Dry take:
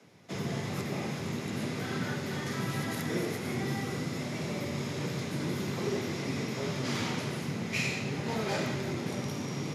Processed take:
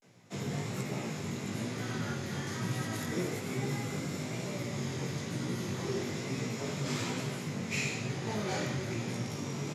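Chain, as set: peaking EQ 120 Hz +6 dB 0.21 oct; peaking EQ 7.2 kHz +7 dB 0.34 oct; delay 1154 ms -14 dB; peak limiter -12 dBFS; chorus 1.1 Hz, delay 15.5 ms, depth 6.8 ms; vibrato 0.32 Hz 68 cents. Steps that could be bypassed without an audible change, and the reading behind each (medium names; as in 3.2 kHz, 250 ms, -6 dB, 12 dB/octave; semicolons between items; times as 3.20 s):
peak limiter -12 dBFS: peak at its input -17.5 dBFS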